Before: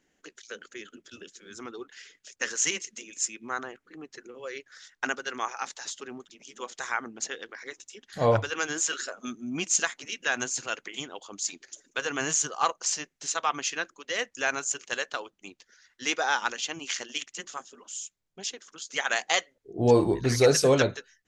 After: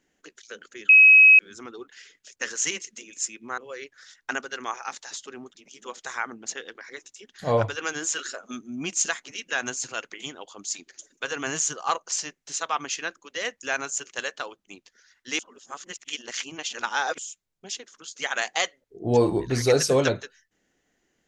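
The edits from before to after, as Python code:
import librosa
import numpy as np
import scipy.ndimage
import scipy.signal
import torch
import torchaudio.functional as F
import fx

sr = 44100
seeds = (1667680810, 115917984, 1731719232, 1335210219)

y = fx.edit(x, sr, fx.bleep(start_s=0.89, length_s=0.5, hz=2550.0, db=-9.0),
    fx.cut(start_s=3.58, length_s=0.74),
    fx.reverse_span(start_s=16.13, length_s=1.79), tone=tone)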